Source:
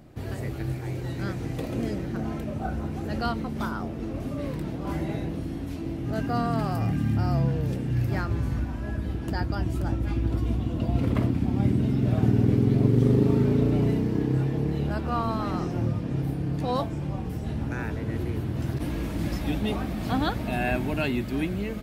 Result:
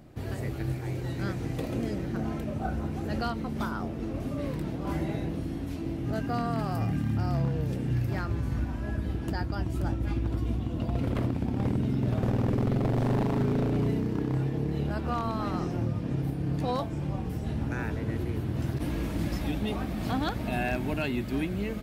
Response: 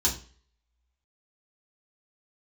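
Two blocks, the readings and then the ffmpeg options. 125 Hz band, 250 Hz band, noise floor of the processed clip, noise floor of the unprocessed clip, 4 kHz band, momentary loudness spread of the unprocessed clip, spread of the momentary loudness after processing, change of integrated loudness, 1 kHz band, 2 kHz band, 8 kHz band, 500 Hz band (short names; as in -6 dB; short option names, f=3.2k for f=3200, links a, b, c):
-3.5 dB, -3.5 dB, -35 dBFS, -33 dBFS, -2.5 dB, 10 LU, 6 LU, -3.5 dB, -2.5 dB, -2.5 dB, n/a, -3.0 dB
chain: -af "aeval=exprs='0.15*(abs(mod(val(0)/0.15+3,4)-2)-1)':c=same,aeval=exprs='0.158*(cos(1*acos(clip(val(0)/0.158,-1,1)))-cos(1*PI/2))+0.00708*(cos(3*acos(clip(val(0)/0.158,-1,1)))-cos(3*PI/2))':c=same,alimiter=limit=-19.5dB:level=0:latency=1:release=202"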